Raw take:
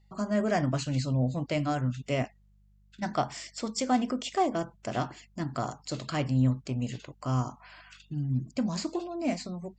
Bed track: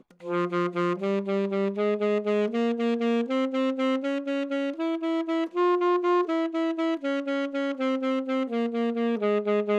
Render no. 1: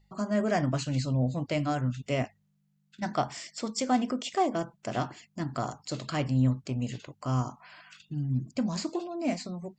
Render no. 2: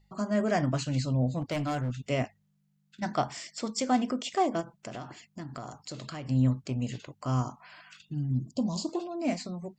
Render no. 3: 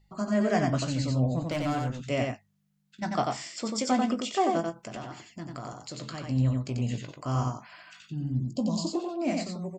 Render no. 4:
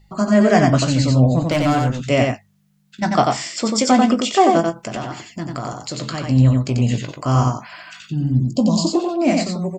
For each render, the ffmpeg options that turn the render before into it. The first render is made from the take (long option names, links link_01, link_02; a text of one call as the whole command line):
ffmpeg -i in.wav -af "bandreject=frequency=50:width_type=h:width=4,bandreject=frequency=100:width_type=h:width=4" out.wav
ffmpeg -i in.wav -filter_complex "[0:a]asettb=1/sr,asplit=3[link_01][link_02][link_03];[link_01]atrim=end=1.414[link_04];[link_02]atrim=start=1.41:end=1.99,asetpts=PTS-STARTPTS,afade=type=in:duration=0.004:curve=qsin,afade=type=out:start_time=0.576:duration=0.004:curve=qsin,asoftclip=type=hard:threshold=-27dB[link_05];[link_03]atrim=start=1.986[link_06];[link_04][link_05]acrossfade=duration=0.004:curve1=hsin:curve2=qsin[link_07];[link_07][link_06]acrossfade=duration=0.004:curve1=qsin:curve2=hsin,asplit=3[link_08][link_09][link_10];[link_08]afade=type=out:start_time=4.6:duration=0.02[link_11];[link_09]acompressor=threshold=-36dB:ratio=5:attack=3.2:release=140:knee=1:detection=peak,afade=type=in:start_time=4.6:duration=0.02,afade=type=out:start_time=6.28:duration=0.02[link_12];[link_10]afade=type=in:start_time=6.28:duration=0.02[link_13];[link_11][link_12][link_13]amix=inputs=3:normalize=0,asettb=1/sr,asplit=3[link_14][link_15][link_16];[link_14]atrim=end=8.314[link_17];[link_15]atrim=start=8.31:end=8.89,asetpts=PTS-STARTPTS,afade=type=in:duration=0.004:curve=qsin,afade=type=out:start_time=0.576:duration=0.004:curve=qsin,asuperstop=centerf=1800:order=8:qfactor=0.93[link_18];[link_16]atrim=start=8.886[link_19];[link_17][link_18]acrossfade=duration=0.004:curve1=hsin:curve2=qsin[link_20];[link_20][link_19]acrossfade=duration=0.004:curve1=qsin:curve2=hsin" out.wav
ffmpeg -i in.wav -filter_complex "[0:a]asplit=2[link_01][link_02];[link_02]adelay=18,volume=-11dB[link_03];[link_01][link_03]amix=inputs=2:normalize=0,aecho=1:1:91:0.668" out.wav
ffmpeg -i in.wav -af "volume=12dB,alimiter=limit=-2dB:level=0:latency=1" out.wav